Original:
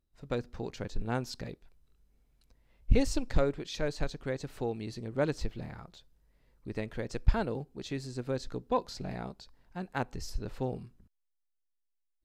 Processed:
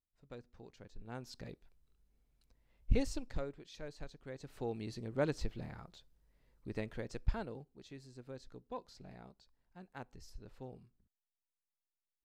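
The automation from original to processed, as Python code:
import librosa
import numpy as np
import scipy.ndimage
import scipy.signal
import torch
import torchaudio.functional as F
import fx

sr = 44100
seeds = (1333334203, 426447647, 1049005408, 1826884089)

y = fx.gain(x, sr, db=fx.line((0.97, -17.0), (1.52, -6.0), (2.93, -6.0), (3.52, -14.5), (4.22, -14.5), (4.75, -4.0), (6.81, -4.0), (7.88, -15.0)))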